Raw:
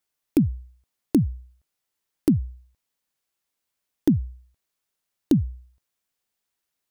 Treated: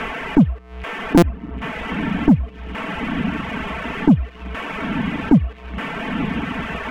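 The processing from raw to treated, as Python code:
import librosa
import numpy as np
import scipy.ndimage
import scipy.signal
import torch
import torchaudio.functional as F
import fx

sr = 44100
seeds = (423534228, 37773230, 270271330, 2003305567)

p1 = fx.delta_mod(x, sr, bps=16000, step_db=-34.5)
p2 = p1 + 0.66 * np.pad(p1, (int(4.5 * sr / 1000.0), 0))[:len(p1)]
p3 = fx.level_steps(p2, sr, step_db=22)
p4 = p2 + F.gain(torch.from_numpy(p3), 1.0).numpy()
p5 = fx.air_absorb(p4, sr, metres=170.0)
p6 = fx.echo_diffused(p5, sr, ms=1002, feedback_pct=42, wet_db=-12.5)
p7 = fx.dereverb_blind(p6, sr, rt60_s=0.72)
p8 = fx.leveller(p7, sr, passes=1)
p9 = fx.buffer_glitch(p8, sr, at_s=(1.17,), block=256, repeats=8)
p10 = fx.band_squash(p9, sr, depth_pct=40)
y = F.gain(torch.from_numpy(p10), 3.5).numpy()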